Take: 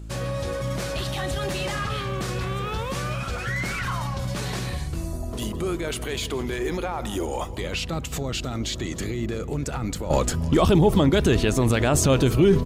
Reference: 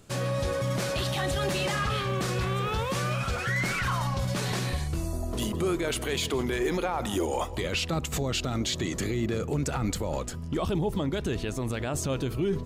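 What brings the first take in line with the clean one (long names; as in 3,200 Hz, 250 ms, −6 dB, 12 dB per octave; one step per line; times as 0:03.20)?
hum removal 54.5 Hz, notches 6
echo removal 303 ms −21 dB
level correction −10.5 dB, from 0:10.10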